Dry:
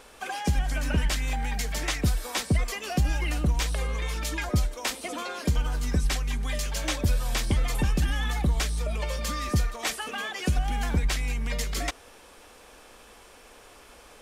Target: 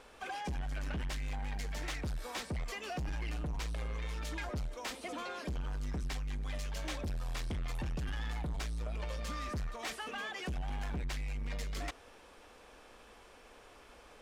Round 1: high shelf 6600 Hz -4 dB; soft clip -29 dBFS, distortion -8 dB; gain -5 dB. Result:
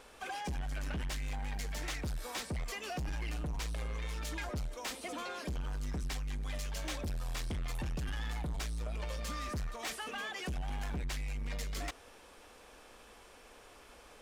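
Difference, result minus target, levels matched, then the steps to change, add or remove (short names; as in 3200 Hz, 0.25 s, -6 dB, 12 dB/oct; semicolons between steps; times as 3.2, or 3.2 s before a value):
8000 Hz band +3.5 dB
change: high shelf 6600 Hz -11.5 dB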